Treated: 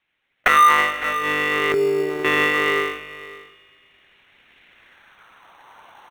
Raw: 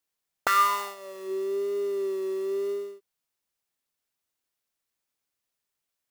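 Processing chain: 1.72–2.25 formant sharpening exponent 2; recorder AGC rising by 7.2 dB/s; de-hum 116.9 Hz, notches 21; monotone LPC vocoder at 8 kHz 150 Hz; band-pass sweep 2100 Hz -> 1000 Hz, 4.73–5.63; on a send: echo 0.556 s -19.5 dB; on the sum: spring tank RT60 3.1 s, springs 46 ms, chirp 75 ms, DRR 16 dB; in parallel at -11 dB: sample-and-hold 18×; on the sum: maximiser +26 dB; gain -3 dB

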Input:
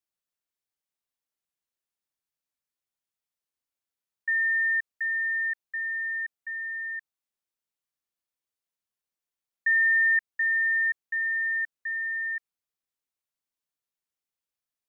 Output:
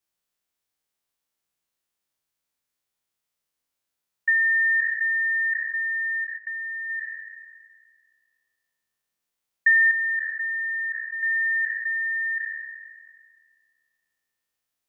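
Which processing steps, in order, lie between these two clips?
spectral trails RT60 1.92 s; 6.24–6.9 level quantiser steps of 12 dB; transient shaper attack +3 dB, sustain -3 dB; 9.91–11.23 steep low-pass 1600 Hz 36 dB/oct; ending taper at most 310 dB/s; gain +4 dB

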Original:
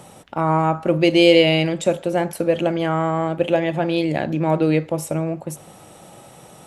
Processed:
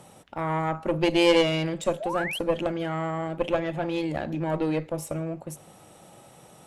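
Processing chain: added harmonics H 4 -14 dB, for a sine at -1 dBFS; painted sound rise, 2–2.39, 570–3400 Hz -25 dBFS; gain -7 dB

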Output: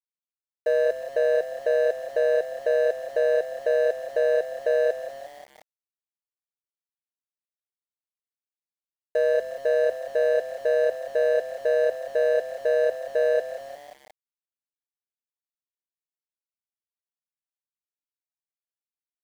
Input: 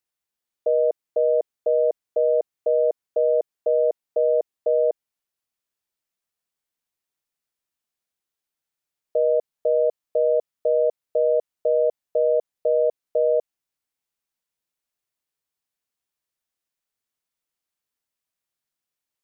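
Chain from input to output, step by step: median filter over 41 samples; frequency-shifting echo 0.178 s, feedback 54%, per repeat +33 Hz, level -13 dB; sample gate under -44.5 dBFS

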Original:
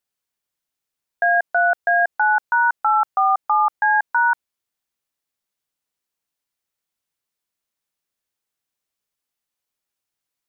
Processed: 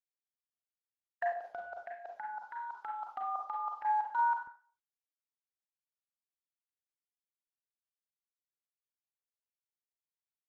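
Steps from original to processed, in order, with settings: low-pass opened by the level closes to 1100 Hz, open at -13 dBFS; gate with hold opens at -15 dBFS; tilt +3.5 dB/oct; 1.32–3.85 negative-ratio compressor -23 dBFS, ratio -0.5; envelope phaser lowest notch 360 Hz, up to 1700 Hz, full sweep at -26.5 dBFS; flutter echo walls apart 11.6 m, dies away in 0.26 s; Schroeder reverb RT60 0.41 s, combs from 32 ms, DRR 1 dB; gain -8.5 dB; Opus 16 kbps 48000 Hz

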